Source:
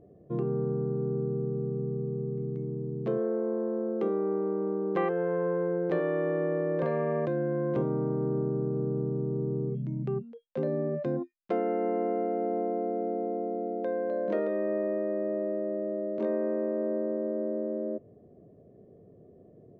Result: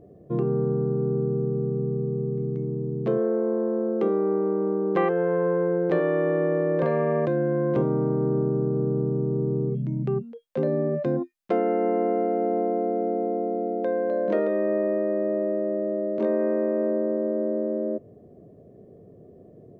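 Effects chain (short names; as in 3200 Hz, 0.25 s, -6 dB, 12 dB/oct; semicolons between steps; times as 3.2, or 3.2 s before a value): 16.39–16.91 high shelf 2500 Hz +7 dB; gain +5.5 dB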